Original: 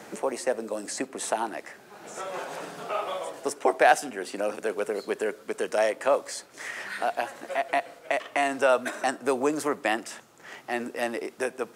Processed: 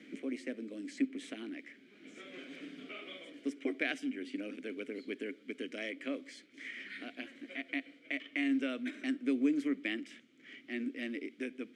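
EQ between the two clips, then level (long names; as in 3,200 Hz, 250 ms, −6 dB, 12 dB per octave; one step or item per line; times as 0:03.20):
formant filter i
+5.0 dB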